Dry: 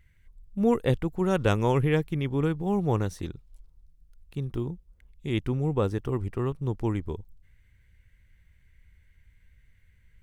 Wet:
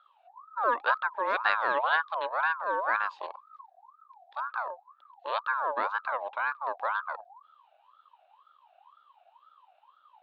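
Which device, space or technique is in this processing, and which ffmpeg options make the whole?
voice changer toy: -af "aeval=exprs='val(0)*sin(2*PI*1000*n/s+1000*0.3/2*sin(2*PI*2*n/s))':c=same,highpass=500,equalizer=f=560:t=q:w=4:g=8,equalizer=f=1k:t=q:w=4:g=7,equalizer=f=1.6k:t=q:w=4:g=9,equalizer=f=2.5k:t=q:w=4:g=5,equalizer=f=3.8k:t=q:w=4:g=10,lowpass=f=4.3k:w=0.5412,lowpass=f=4.3k:w=1.3066,volume=-5.5dB"

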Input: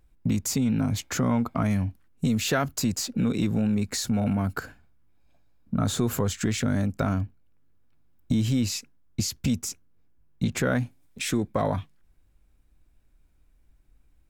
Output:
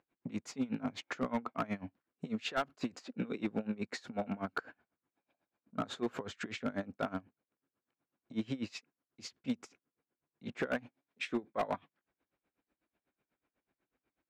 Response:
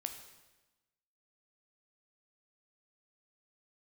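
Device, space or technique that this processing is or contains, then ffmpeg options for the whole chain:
helicopter radio: -af "highpass=320,lowpass=2.6k,aeval=exprs='val(0)*pow(10,-22*(0.5-0.5*cos(2*PI*8.1*n/s))/20)':c=same,asoftclip=type=hard:threshold=-26dB"

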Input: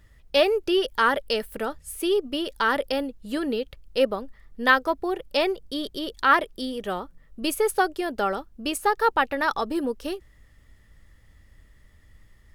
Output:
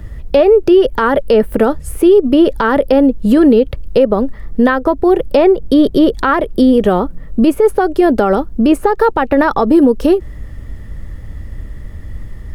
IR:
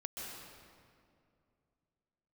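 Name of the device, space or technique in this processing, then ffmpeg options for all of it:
mastering chain: -filter_complex "[0:a]equalizer=f=4.8k:t=o:w=2.6:g=-2.5,acrossover=split=120|2600[a][b][c];[a]acompressor=threshold=-46dB:ratio=4[d];[b]acompressor=threshold=-24dB:ratio=4[e];[c]acompressor=threshold=-46dB:ratio=4[f];[d][e][f]amix=inputs=3:normalize=0,acompressor=threshold=-32dB:ratio=2,tiltshelf=f=850:g=6.5,alimiter=level_in=22dB:limit=-1dB:release=50:level=0:latency=1,volume=-1dB"

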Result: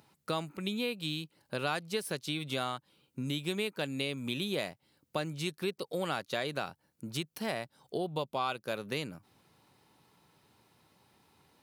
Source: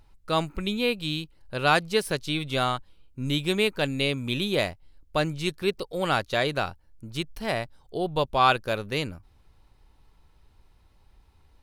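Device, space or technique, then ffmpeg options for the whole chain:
ASMR close-microphone chain: -filter_complex "[0:a]lowshelf=f=140:g=3.5,acompressor=threshold=-34dB:ratio=4,highpass=f=140:w=0.5412,highpass=f=140:w=1.3066,highshelf=f=7.4k:g=6,asettb=1/sr,asplit=3[a][b][c];[a]atrim=end=8.064[d];[b]atrim=start=8.06:end=8.62,asetpts=PTS-STARTPTS,afade=t=in:d=0.004:c=qsin,afade=t=out:st=0.556:d=0.004:c=qsin,bandreject=f=1.7k:w=5.4[e];[c]atrim=start=8.616[f];[d][e]acrossfade=d=0.004:c1=hsin:c2=qsin[g];[g][f]acrossfade=d=0.004:c1=qsin:c2=hsin,volume=1.5dB"

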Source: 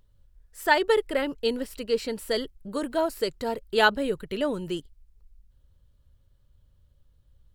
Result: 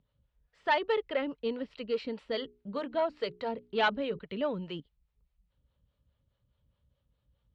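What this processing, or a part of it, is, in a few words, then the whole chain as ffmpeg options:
guitar amplifier with harmonic tremolo: -filter_complex "[0:a]acrossover=split=410[a][b];[a]aeval=exprs='val(0)*(1-0.7/2+0.7/2*cos(2*PI*4.8*n/s))':c=same[c];[b]aeval=exprs='val(0)*(1-0.7/2-0.7/2*cos(2*PI*4.8*n/s))':c=same[d];[c][d]amix=inputs=2:normalize=0,asoftclip=type=tanh:threshold=-18.5dB,highpass=82,equalizer=f=92:t=q:w=4:g=-8,equalizer=f=360:t=q:w=4:g=-7,equalizer=f=1.6k:t=q:w=4:g=-4,lowpass=f=3.7k:w=0.5412,lowpass=f=3.7k:w=1.3066,asettb=1/sr,asplit=3[e][f][g];[e]atrim=end=2.214[h];[f]atrim=start=2.21:end=4.19,asetpts=PTS-STARTPTS,afade=t=in:d=0.004:c=qsin,afade=t=out:st=1.976:d=0.004:c=qsin,bandreject=f=60:t=h:w=6,bandreject=f=120:t=h:w=6,bandreject=f=180:t=h:w=6,bandreject=f=240:t=h:w=6,bandreject=f=300:t=h:w=6,bandreject=f=360:t=h:w=6,bandreject=f=420:t=h:w=6[i];[g]atrim=start=4.186[j];[h][i]acrossfade=d=0.004:c1=hsin:c2=qsin[k];[k][j]acrossfade=d=0.004:c1=qsin:c2=hsin"

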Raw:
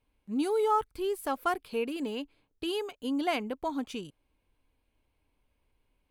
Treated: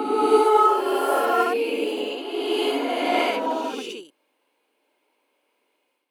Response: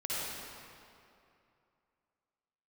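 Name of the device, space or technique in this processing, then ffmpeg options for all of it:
ghost voice: -filter_complex "[0:a]areverse[a];[1:a]atrim=start_sample=2205[b];[a][b]afir=irnorm=-1:irlink=0,areverse,highpass=f=320:w=0.5412,highpass=f=320:w=1.3066,volume=5.5dB"

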